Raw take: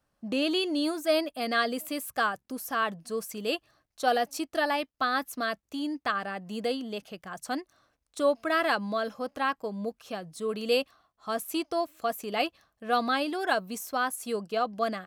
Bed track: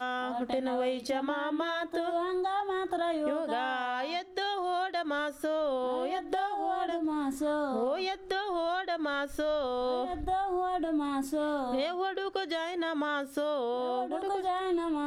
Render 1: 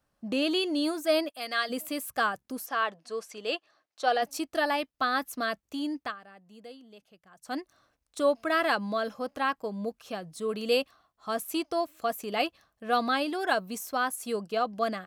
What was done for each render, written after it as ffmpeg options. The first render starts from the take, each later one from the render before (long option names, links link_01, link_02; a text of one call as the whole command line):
ffmpeg -i in.wav -filter_complex "[0:a]asplit=3[link_01][link_02][link_03];[link_01]afade=type=out:start_time=1.29:duration=0.02[link_04];[link_02]highpass=frequency=1200:poles=1,afade=type=in:start_time=1.29:duration=0.02,afade=type=out:start_time=1.69:duration=0.02[link_05];[link_03]afade=type=in:start_time=1.69:duration=0.02[link_06];[link_04][link_05][link_06]amix=inputs=3:normalize=0,asplit=3[link_07][link_08][link_09];[link_07]afade=type=out:start_time=2.65:duration=0.02[link_10];[link_08]highpass=390,lowpass=6000,afade=type=in:start_time=2.65:duration=0.02,afade=type=out:start_time=4.21:duration=0.02[link_11];[link_09]afade=type=in:start_time=4.21:duration=0.02[link_12];[link_10][link_11][link_12]amix=inputs=3:normalize=0,asplit=3[link_13][link_14][link_15];[link_13]atrim=end=6.16,asetpts=PTS-STARTPTS,afade=type=out:start_time=5.99:duration=0.17:silence=0.149624[link_16];[link_14]atrim=start=6.16:end=7.41,asetpts=PTS-STARTPTS,volume=-16.5dB[link_17];[link_15]atrim=start=7.41,asetpts=PTS-STARTPTS,afade=type=in:duration=0.17:silence=0.149624[link_18];[link_16][link_17][link_18]concat=n=3:v=0:a=1" out.wav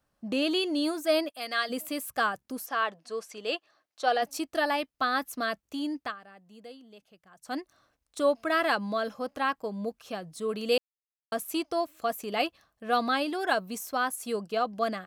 ffmpeg -i in.wav -filter_complex "[0:a]asplit=3[link_01][link_02][link_03];[link_01]atrim=end=10.78,asetpts=PTS-STARTPTS,afade=type=out:start_time=10.776:duration=0.004:curve=hsin[link_04];[link_02]atrim=start=10.78:end=11.32,asetpts=PTS-STARTPTS,volume=0[link_05];[link_03]atrim=start=11.32,asetpts=PTS-STARTPTS,afade=type=in:duration=0.004:curve=hsin[link_06];[link_04][link_05][link_06]concat=n=3:v=0:a=1" out.wav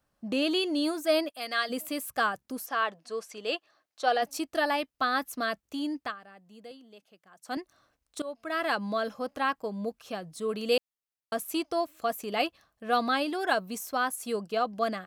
ffmpeg -i in.wav -filter_complex "[0:a]asettb=1/sr,asplit=3[link_01][link_02][link_03];[link_01]atrim=end=6.714[link_04];[link_02]atrim=start=6.71:end=7.57,asetpts=PTS-STARTPTS,afade=type=in:duration=0.004:curve=qsin,afade=type=out:start_time=0.856:duration=0.004:curve=qsin,highpass=190[link_05];[link_03]atrim=start=7.566[link_06];[link_04][link_05]acrossfade=duration=0.004:curve1=hsin:curve2=qsin[link_07];[link_07][link_06]acrossfade=duration=0.004:curve1=qsin:curve2=hsin,asplit=2[link_08][link_09];[link_08]atrim=end=8.22,asetpts=PTS-STARTPTS,afade=type=out:start_time=8.216:duration=0.004:curve=hsin:silence=0.112202[link_10];[link_09]atrim=start=8.22,asetpts=PTS-STARTPTS,afade=type=in:duration=0.65:silence=0.112202[link_11];[link_10][link_11]concat=n=2:v=0:a=1" out.wav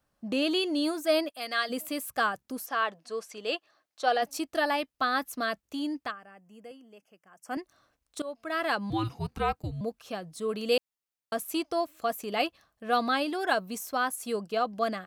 ffmpeg -i in.wav -filter_complex "[0:a]asettb=1/sr,asplit=3[link_01][link_02][link_03];[link_01]atrim=end=6.114[link_04];[link_02]atrim=start=6.11:end=7.58,asetpts=PTS-STARTPTS,afade=type=in:duration=0.004:curve=qsin,afade=type=out:start_time=1.466:duration=0.004:curve=qsin,asuperstop=centerf=3900:order=4:qfactor=2.1[link_05];[link_03]atrim=start=7.576[link_06];[link_04][link_05]acrossfade=duration=0.004:curve1=hsin:curve2=qsin[link_07];[link_07][link_06]acrossfade=duration=0.004:curve1=qsin:curve2=hsin,asettb=1/sr,asplit=3[link_08][link_09][link_10];[link_08]atrim=end=8.904[link_11];[link_09]atrim=start=8.9:end=9.81,asetpts=PTS-STARTPTS,afade=type=in:duration=0.004:curve=qsin,afade=type=out:start_time=0.906:duration=0.004:curve=qsin,afreqshift=-340[link_12];[link_10]atrim=start=9.806[link_13];[link_11][link_12]acrossfade=duration=0.004:curve1=hsin:curve2=qsin[link_14];[link_14][link_13]acrossfade=duration=0.004:curve1=qsin:curve2=hsin" out.wav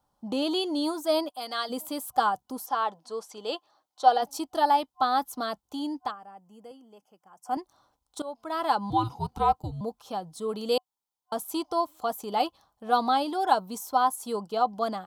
ffmpeg -i in.wav -af "superequalizer=9b=3.16:11b=0.355:12b=0.355" out.wav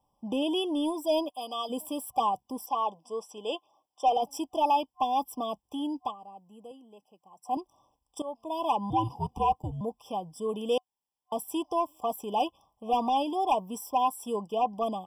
ffmpeg -i in.wav -af "asoftclip=type=tanh:threshold=-17dB,afftfilt=real='re*eq(mod(floor(b*sr/1024/1200),2),0)':imag='im*eq(mod(floor(b*sr/1024/1200),2),0)':win_size=1024:overlap=0.75" out.wav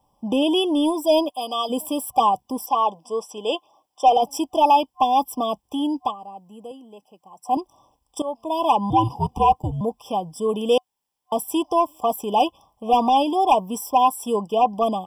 ffmpeg -i in.wav -af "volume=9dB" out.wav